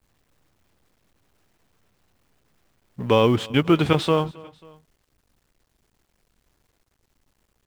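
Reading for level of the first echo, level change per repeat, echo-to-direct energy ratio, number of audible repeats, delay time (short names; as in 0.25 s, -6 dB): -23.0 dB, -5.0 dB, -22.0 dB, 2, 0.27 s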